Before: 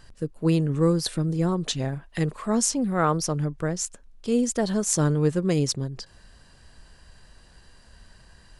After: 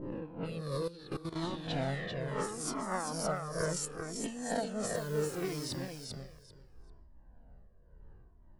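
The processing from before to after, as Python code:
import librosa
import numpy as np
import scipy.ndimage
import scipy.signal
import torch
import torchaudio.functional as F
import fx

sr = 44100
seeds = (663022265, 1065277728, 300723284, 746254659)

y = fx.spec_swells(x, sr, rise_s=1.13)
y = y * (1.0 - 0.84 / 2.0 + 0.84 / 2.0 * np.cos(2.0 * np.pi * 1.6 * (np.arange(len(y)) / sr)))
y = fx.env_lowpass(y, sr, base_hz=390.0, full_db=-22.5)
y = fx.dmg_crackle(y, sr, seeds[0], per_s=120.0, level_db=-43.0, at=(2.91, 3.37), fade=0.02)
y = fx.over_compress(y, sr, threshold_db=-28.0, ratio=-1.0)
y = fx.peak_eq(y, sr, hz=6600.0, db=-10.0, octaves=0.69)
y = fx.dmg_noise_colour(y, sr, seeds[1], colour='white', level_db=-49.0, at=(4.94, 5.64), fade=0.02)
y = fx.low_shelf(y, sr, hz=170.0, db=-8.5)
y = fx.echo_feedback(y, sr, ms=392, feedback_pct=17, wet_db=-5)
y = fx.level_steps(y, sr, step_db=15, at=(0.76, 1.38))
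y = fx.comb_cascade(y, sr, direction='falling', hz=0.71)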